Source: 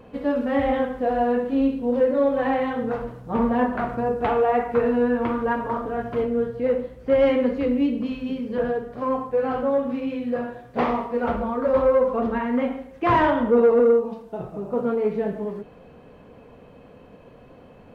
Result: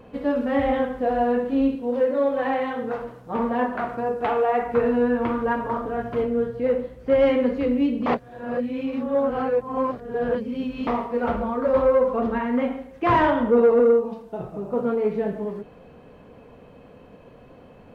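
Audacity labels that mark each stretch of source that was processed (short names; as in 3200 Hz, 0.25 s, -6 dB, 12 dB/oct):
1.750000	4.620000	low shelf 180 Hz -11.5 dB
8.060000	10.870000	reverse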